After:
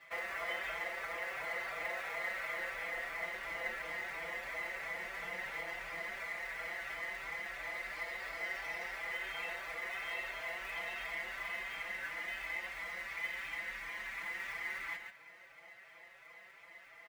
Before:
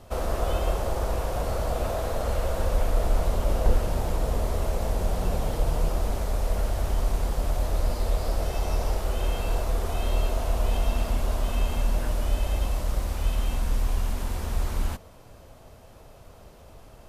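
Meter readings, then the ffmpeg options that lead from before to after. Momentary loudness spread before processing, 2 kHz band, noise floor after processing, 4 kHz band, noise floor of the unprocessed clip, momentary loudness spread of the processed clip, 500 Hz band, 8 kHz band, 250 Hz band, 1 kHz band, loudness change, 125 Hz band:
3 LU, +6.0 dB, −58 dBFS, −8.0 dB, −49 dBFS, 9 LU, −16.5 dB, −16.0 dB, −24.0 dB, −11.0 dB, −11.0 dB, −37.0 dB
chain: -filter_complex "[0:a]aecho=1:1:5.9:1,asplit=2[link_01][link_02];[link_02]acompressor=threshold=-28dB:ratio=6,volume=-2.5dB[link_03];[link_01][link_03]amix=inputs=2:normalize=0,bandpass=frequency=2000:width_type=q:width=12:csg=0,acrusher=bits=5:mode=log:mix=0:aa=0.000001,aecho=1:1:137:0.473,asplit=2[link_04][link_05];[link_05]adelay=4.7,afreqshift=2.9[link_06];[link_04][link_06]amix=inputs=2:normalize=1,volume=12dB"

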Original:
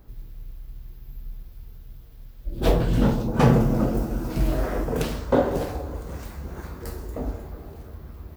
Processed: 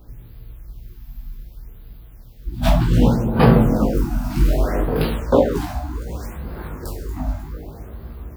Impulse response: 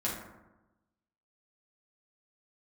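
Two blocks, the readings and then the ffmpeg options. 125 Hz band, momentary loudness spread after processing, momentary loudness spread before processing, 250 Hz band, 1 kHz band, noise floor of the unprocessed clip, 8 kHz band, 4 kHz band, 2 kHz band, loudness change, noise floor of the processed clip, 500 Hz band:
+5.0 dB, 21 LU, 23 LU, +5.0 dB, +4.5 dB, −44 dBFS, +2.5 dB, +4.5 dB, +4.0 dB, +5.0 dB, −41 dBFS, +4.5 dB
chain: -af "flanger=delay=16.5:depth=4.1:speed=0.35,afftfilt=real='re*(1-between(b*sr/1024,400*pow(7300/400,0.5+0.5*sin(2*PI*0.65*pts/sr))/1.41,400*pow(7300/400,0.5+0.5*sin(2*PI*0.65*pts/sr))*1.41))':imag='im*(1-between(b*sr/1024,400*pow(7300/400,0.5+0.5*sin(2*PI*0.65*pts/sr))/1.41,400*pow(7300/400,0.5+0.5*sin(2*PI*0.65*pts/sr))*1.41))':win_size=1024:overlap=0.75,volume=8dB"

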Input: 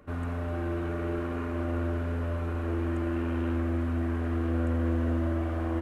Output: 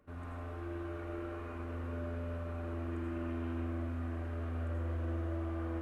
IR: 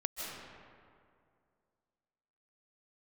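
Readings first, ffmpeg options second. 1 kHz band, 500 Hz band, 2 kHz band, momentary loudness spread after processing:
−8.5 dB, −9.0 dB, −9.0 dB, 5 LU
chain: -filter_complex "[1:a]atrim=start_sample=2205,afade=type=out:start_time=0.41:duration=0.01,atrim=end_sample=18522,asetrate=83790,aresample=44100[link_01];[0:a][link_01]afir=irnorm=-1:irlink=0,volume=-5.5dB"

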